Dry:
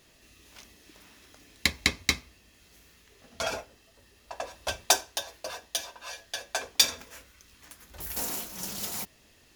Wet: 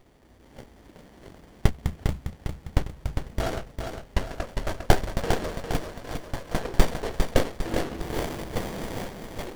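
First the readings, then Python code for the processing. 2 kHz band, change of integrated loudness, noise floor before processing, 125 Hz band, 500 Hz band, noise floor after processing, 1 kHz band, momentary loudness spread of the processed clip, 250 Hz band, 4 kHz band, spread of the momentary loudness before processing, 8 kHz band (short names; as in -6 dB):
-2.0 dB, -1.0 dB, -61 dBFS, +17.0 dB, +9.5 dB, -54 dBFS, +5.0 dB, 11 LU, +12.5 dB, -8.5 dB, 17 LU, -10.0 dB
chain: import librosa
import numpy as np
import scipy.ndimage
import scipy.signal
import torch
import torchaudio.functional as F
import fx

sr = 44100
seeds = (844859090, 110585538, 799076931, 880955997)

p1 = fx.spec_box(x, sr, start_s=1.7, length_s=0.69, low_hz=230.0, high_hz=6600.0, gain_db=-18)
p2 = fx.echo_pitch(p1, sr, ms=428, semitones=-6, count=2, db_per_echo=-3.0)
p3 = p2 + fx.echo_feedback(p2, sr, ms=403, feedback_pct=49, wet_db=-6.0, dry=0)
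p4 = fx.running_max(p3, sr, window=33)
y = F.gain(torch.from_numpy(p4), 5.0).numpy()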